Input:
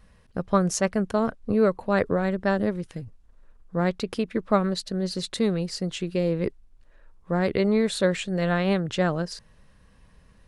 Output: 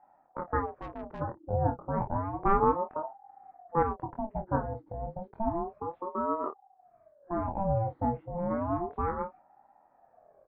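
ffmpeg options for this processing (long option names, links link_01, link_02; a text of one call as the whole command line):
ffmpeg -i in.wav -filter_complex "[0:a]lowpass=frequency=1000:width=0.5412,lowpass=frequency=1000:width=1.3066,aecho=1:1:24|51:0.631|0.224,asplit=3[link_01][link_02][link_03];[link_01]afade=type=out:start_time=0.65:duration=0.02[link_04];[link_02]aeval=exprs='(tanh(28.2*val(0)+0.55)-tanh(0.55))/28.2':channel_layout=same,afade=type=in:start_time=0.65:duration=0.02,afade=type=out:start_time=1.2:duration=0.02[link_05];[link_03]afade=type=in:start_time=1.2:duration=0.02[link_06];[link_04][link_05][link_06]amix=inputs=3:normalize=0,aemphasis=mode=reproduction:type=75kf,asettb=1/sr,asplit=3[link_07][link_08][link_09];[link_07]atrim=end=2.424[link_10];[link_08]atrim=start=2.42:end=3.83,asetpts=PTS-STARTPTS,afade=type=in:duration=0.004:curve=qsin,afade=type=out:start_time=1.406:duration=0.004:curve=qsin,acontrast=84[link_11];[link_09]atrim=start=3.826[link_12];[link_10][link_11]acrossfade=duration=0.004:curve1=hsin:curve2=qsin[link_13];[link_13][link_12]acrossfade=duration=0.004:curve1=qsin:curve2=hsin,aeval=exprs='val(0)*sin(2*PI*550*n/s+550*0.45/0.31*sin(2*PI*0.31*n/s))':channel_layout=same,volume=-5.5dB" out.wav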